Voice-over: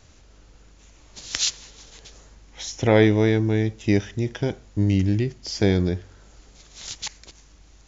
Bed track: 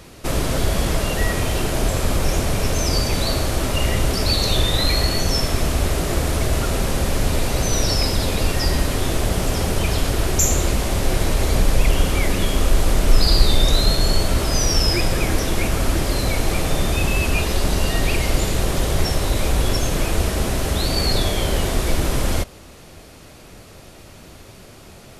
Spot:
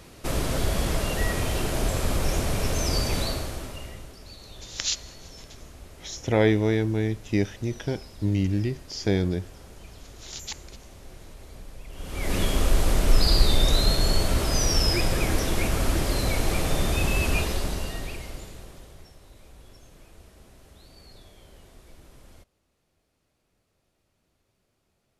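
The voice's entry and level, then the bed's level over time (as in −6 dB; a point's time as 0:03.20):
3.45 s, −4.0 dB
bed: 0:03.19 −5.5 dB
0:04.19 −26.5 dB
0:11.88 −26.5 dB
0:12.35 −4.5 dB
0:17.37 −4.5 dB
0:19.13 −31 dB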